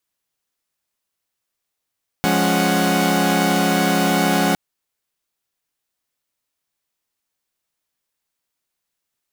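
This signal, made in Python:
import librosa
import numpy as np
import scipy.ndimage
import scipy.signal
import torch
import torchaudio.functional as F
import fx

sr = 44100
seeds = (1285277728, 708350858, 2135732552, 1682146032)

y = fx.chord(sr, length_s=2.31, notes=(53, 56, 61, 78), wave='saw', level_db=-18.5)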